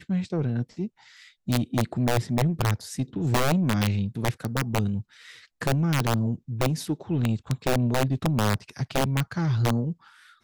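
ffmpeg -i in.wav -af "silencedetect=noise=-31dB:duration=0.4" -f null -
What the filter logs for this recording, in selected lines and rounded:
silence_start: 0.87
silence_end: 1.48 | silence_duration: 0.61
silence_start: 5.01
silence_end: 5.62 | silence_duration: 0.61
silence_start: 9.92
silence_end: 10.43 | silence_duration: 0.51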